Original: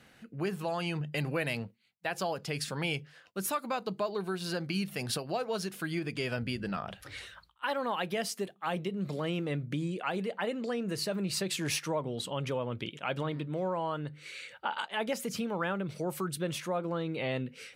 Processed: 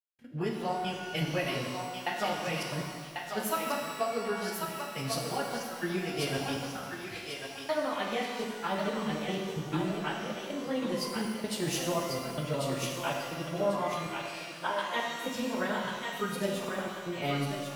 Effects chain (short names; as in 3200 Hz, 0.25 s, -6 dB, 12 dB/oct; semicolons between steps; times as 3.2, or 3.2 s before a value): pitch shift by moving bins +1.5 st; gate with hold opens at -46 dBFS; transient shaper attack +5 dB, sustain -7 dB; step gate "..xxxxxx.x" 160 bpm -60 dB; thinning echo 1.093 s, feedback 32%, high-pass 620 Hz, level -4 dB; shimmer reverb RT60 1.6 s, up +12 st, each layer -8 dB, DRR 0.5 dB